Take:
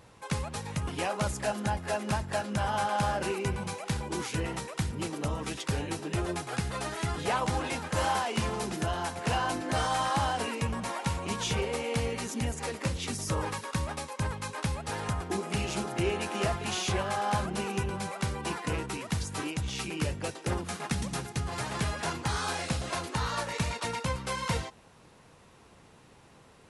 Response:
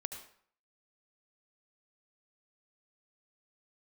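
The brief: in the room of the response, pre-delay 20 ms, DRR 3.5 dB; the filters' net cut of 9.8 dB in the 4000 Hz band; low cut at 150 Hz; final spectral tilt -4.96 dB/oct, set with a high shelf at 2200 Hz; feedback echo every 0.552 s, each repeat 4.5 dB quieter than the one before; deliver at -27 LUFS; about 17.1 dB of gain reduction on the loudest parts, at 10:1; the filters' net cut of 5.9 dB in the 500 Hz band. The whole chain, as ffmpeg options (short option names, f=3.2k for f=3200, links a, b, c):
-filter_complex "[0:a]highpass=150,equalizer=f=500:t=o:g=-7,highshelf=f=2.2k:g=-8.5,equalizer=f=4k:t=o:g=-5,acompressor=threshold=-47dB:ratio=10,aecho=1:1:552|1104|1656|2208|2760|3312|3864|4416|4968:0.596|0.357|0.214|0.129|0.0772|0.0463|0.0278|0.0167|0.01,asplit=2[a][b];[1:a]atrim=start_sample=2205,adelay=20[c];[b][c]afir=irnorm=-1:irlink=0,volume=-2.5dB[d];[a][d]amix=inputs=2:normalize=0,volume=20.5dB"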